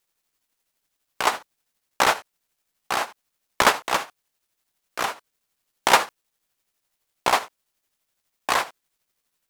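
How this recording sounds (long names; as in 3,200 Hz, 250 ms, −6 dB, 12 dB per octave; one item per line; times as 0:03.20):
a quantiser's noise floor 12 bits, dither none
tremolo triangle 12 Hz, depth 55%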